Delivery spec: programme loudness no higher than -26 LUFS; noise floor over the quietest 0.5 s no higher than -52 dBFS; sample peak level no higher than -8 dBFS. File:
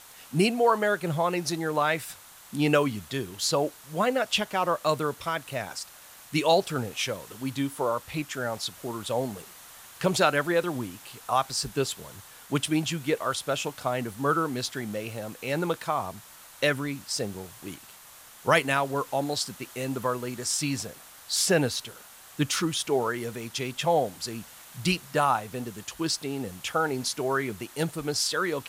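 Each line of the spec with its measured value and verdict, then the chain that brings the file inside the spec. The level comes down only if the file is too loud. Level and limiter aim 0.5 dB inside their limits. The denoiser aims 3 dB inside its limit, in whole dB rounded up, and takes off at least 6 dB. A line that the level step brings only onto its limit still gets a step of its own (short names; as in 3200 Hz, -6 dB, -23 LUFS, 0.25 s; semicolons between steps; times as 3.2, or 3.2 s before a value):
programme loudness -28.0 LUFS: OK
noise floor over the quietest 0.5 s -50 dBFS: fail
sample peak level -5.5 dBFS: fail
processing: denoiser 6 dB, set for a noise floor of -50 dBFS; limiter -8.5 dBFS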